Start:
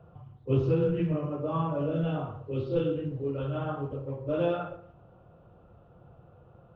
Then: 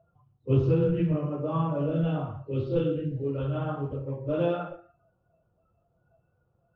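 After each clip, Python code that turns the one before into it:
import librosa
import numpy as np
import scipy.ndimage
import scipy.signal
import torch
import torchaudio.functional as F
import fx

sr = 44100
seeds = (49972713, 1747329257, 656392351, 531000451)

y = fx.noise_reduce_blind(x, sr, reduce_db=19)
y = fx.low_shelf(y, sr, hz=240.0, db=4.5)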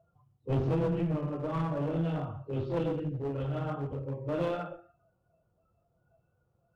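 y = fx.clip_asym(x, sr, top_db=-29.0, bottom_db=-17.5)
y = F.gain(torch.from_numpy(y), -2.5).numpy()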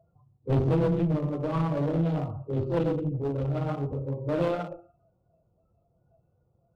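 y = fx.wiener(x, sr, points=25)
y = F.gain(torch.from_numpy(y), 5.0).numpy()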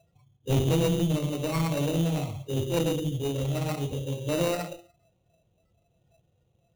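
y = fx.sample_hold(x, sr, seeds[0], rate_hz=3300.0, jitter_pct=0)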